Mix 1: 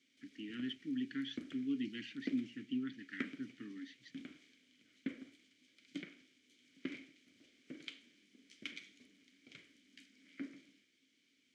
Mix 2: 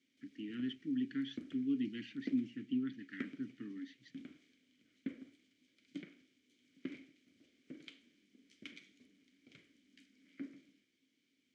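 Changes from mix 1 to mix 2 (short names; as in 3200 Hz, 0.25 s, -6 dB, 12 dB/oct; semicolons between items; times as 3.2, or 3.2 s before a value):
background -3.0 dB; master: add tilt shelf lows +3.5 dB, about 660 Hz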